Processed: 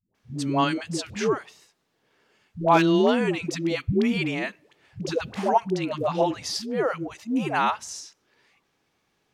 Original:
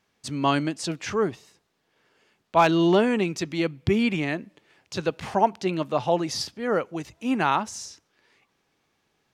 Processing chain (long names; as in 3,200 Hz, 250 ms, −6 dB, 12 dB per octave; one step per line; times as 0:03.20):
all-pass dispersion highs, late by 148 ms, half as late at 400 Hz